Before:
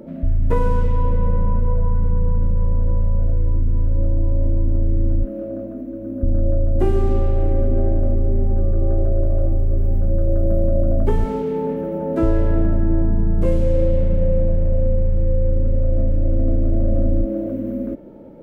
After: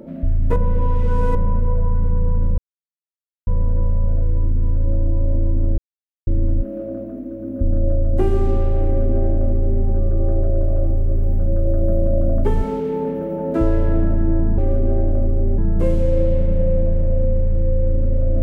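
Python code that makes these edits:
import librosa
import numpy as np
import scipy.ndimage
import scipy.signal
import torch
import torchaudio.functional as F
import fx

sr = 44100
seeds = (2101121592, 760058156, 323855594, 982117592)

y = fx.edit(x, sr, fx.reverse_span(start_s=0.56, length_s=0.79),
    fx.insert_silence(at_s=2.58, length_s=0.89),
    fx.insert_silence(at_s=4.89, length_s=0.49),
    fx.duplicate(start_s=7.46, length_s=1.0, to_s=13.2), tone=tone)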